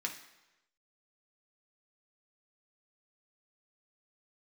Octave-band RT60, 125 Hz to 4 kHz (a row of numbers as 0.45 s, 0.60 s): 0.95 s, 0.85 s, 1.0 s, 1.0 s, 1.0 s, 0.90 s